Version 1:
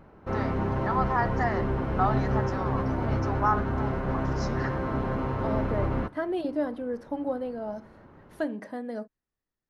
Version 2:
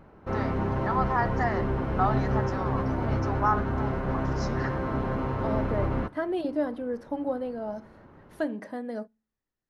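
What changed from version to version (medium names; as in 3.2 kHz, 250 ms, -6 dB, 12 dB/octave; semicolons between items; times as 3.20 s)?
second voice: send on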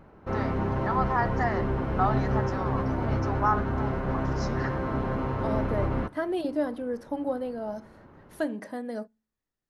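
second voice: add treble shelf 5.8 kHz +9.5 dB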